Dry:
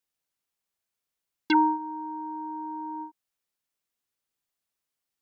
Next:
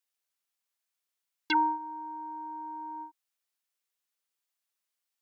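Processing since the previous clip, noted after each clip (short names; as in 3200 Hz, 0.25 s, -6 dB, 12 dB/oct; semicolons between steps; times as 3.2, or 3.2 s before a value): HPF 950 Hz 6 dB/oct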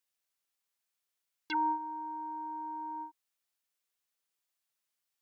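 limiter -24 dBFS, peak gain reduction 9.5 dB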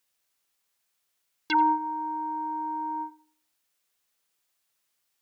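darkening echo 84 ms, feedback 36%, low-pass 1500 Hz, level -15 dB; gain +9 dB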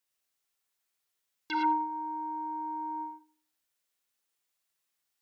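non-linear reverb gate 0.13 s rising, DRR 1 dB; gain -8 dB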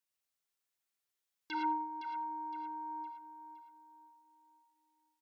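feedback echo 0.513 s, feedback 39%, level -10 dB; gain -6.5 dB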